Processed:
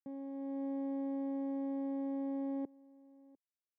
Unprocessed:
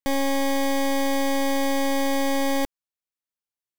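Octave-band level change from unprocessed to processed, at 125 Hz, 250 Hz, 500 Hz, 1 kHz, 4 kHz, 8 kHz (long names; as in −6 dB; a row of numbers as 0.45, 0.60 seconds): can't be measured, −11.0 dB, −18.5 dB, −23.5 dB, below −40 dB, below −40 dB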